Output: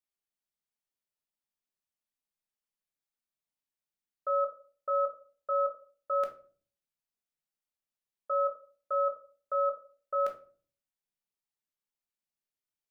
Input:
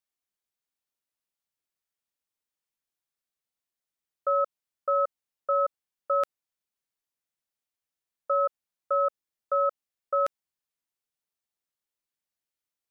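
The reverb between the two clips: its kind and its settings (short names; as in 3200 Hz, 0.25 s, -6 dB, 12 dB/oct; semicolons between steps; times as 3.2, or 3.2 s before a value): shoebox room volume 310 m³, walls furnished, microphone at 1.4 m; gain -7.5 dB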